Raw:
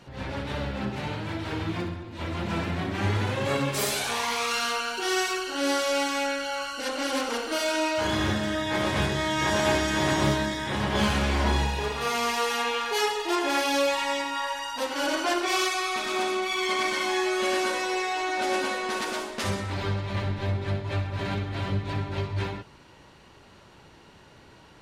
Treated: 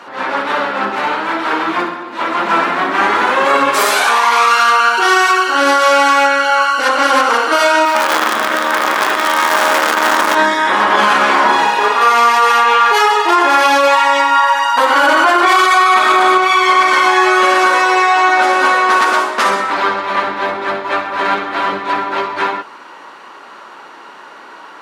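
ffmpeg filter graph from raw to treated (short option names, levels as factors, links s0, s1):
-filter_complex "[0:a]asettb=1/sr,asplit=3[s0][s1][s2];[s0]atrim=end=7.854[s3];[s1]atrim=start=7.85:end=10.35,asetpts=PTS-STARTPTS,afade=t=in:d=0.004:c=qsin,afade=t=out:st=2.496:d=0.004:c=qsin,highpass=200,asplit=8[s4][s5][s6][s7][s8][s9][s10][s11];[s5]adelay=93,afreqshift=-78,volume=0.631[s12];[s6]adelay=186,afreqshift=-156,volume=0.347[s13];[s7]adelay=279,afreqshift=-234,volume=0.191[s14];[s8]adelay=372,afreqshift=-312,volume=0.105[s15];[s9]adelay=465,afreqshift=-390,volume=0.0575[s16];[s10]adelay=558,afreqshift=-468,volume=0.0316[s17];[s11]adelay=651,afreqshift=-546,volume=0.0174[s18];[s4][s12][s13][s14][s15][s16][s17][s18]amix=inputs=8:normalize=0,atrim=end_sample=110250,acrusher=bits=4:dc=4:mix=0:aa=0.000001[s19];[s2]atrim=start=10.346[s20];[s3][s19]acrossfade=d=0.004:c1=hsin:c2=qsin[s21];[s21][s20]acrossfade=d=0.004:c1=qsin:c2=hsin,asettb=1/sr,asplit=3[s22][s23][s24];[s22]atrim=end=14.774[s25];[s23]atrim=start=14.77:end=16.38,asetpts=PTS-STARTPTS,afade=t=in:d=0.004:c=qsin,afade=t=out:st=1.606:d=0.004:c=qsin,equalizer=f=5600:w=3.8:g=-6,bandreject=f=2600:w=23,acontrast=45[s26];[s24]atrim=start=16.376[s27];[s25][s26]acrossfade=d=0.004:c1=hsin:c2=qsin[s28];[s28][s27]acrossfade=d=0.004:c1=qsin:c2=hsin,highpass=f=250:w=0.5412,highpass=f=250:w=1.3066,equalizer=f=1200:t=o:w=1.5:g=15,alimiter=level_in=3.35:limit=0.891:release=50:level=0:latency=1,volume=0.891"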